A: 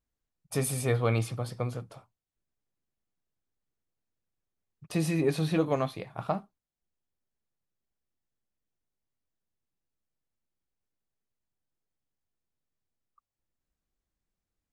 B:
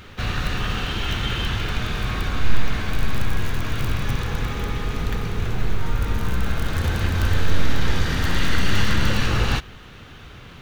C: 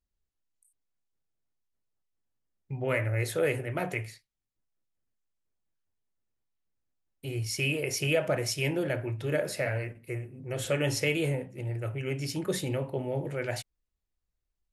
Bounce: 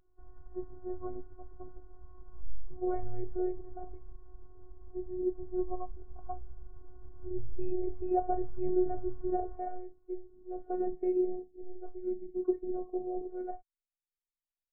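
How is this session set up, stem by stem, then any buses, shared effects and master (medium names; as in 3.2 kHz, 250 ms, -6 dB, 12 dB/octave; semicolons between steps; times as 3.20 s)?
-5.5 dB, 0.00 s, no send, none
-11.5 dB, 0.00 s, no send, compression 1.5:1, threshold -32 dBFS, peak gain reduction 9 dB
+1.0 dB, 0.00 s, no send, auto duck -18 dB, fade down 1.65 s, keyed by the first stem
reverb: none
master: low-pass 1.1 kHz 24 dB/octave; robot voice 365 Hz; spectral contrast expander 1.5:1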